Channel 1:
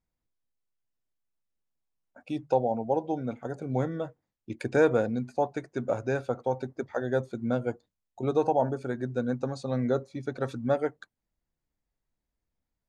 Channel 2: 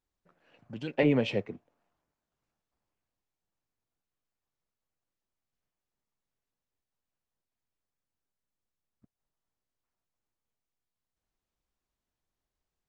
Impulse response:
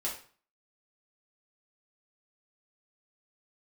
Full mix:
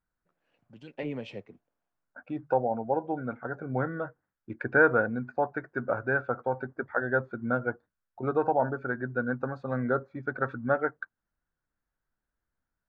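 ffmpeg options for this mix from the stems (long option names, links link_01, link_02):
-filter_complex "[0:a]lowpass=frequency=1500:width_type=q:width=5.1,volume=-2.5dB[link_01];[1:a]volume=-10.5dB[link_02];[link_01][link_02]amix=inputs=2:normalize=0"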